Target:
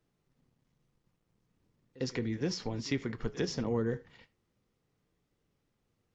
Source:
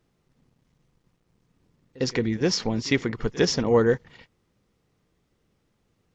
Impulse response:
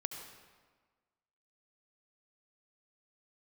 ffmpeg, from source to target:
-filter_complex "[0:a]asplit=2[a][b];[1:a]atrim=start_sample=2205,afade=t=out:st=0.13:d=0.01,atrim=end_sample=6174[c];[b][c]afir=irnorm=-1:irlink=0,volume=-7dB[d];[a][d]amix=inputs=2:normalize=0,flanger=delay=6.8:depth=2.7:regen=-71:speed=0.38:shape=sinusoidal,acrossover=split=330[e][f];[f]acompressor=threshold=-29dB:ratio=4[g];[e][g]amix=inputs=2:normalize=0,volume=-6.5dB"

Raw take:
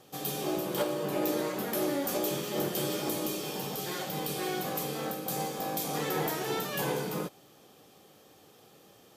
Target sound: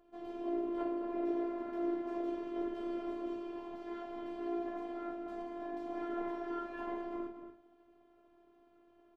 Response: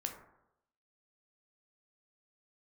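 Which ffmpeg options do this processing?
-filter_complex "[0:a]lowpass=1.3k,lowshelf=f=71:g=11,asplit=2[a][b];[b]adelay=233.2,volume=-9dB,highshelf=f=4k:g=-5.25[c];[a][c]amix=inputs=2:normalize=0[d];[1:a]atrim=start_sample=2205,asetrate=79380,aresample=44100[e];[d][e]afir=irnorm=-1:irlink=0,afftfilt=real='hypot(re,im)*cos(PI*b)':imag='0':win_size=512:overlap=0.75,volume=2dB"

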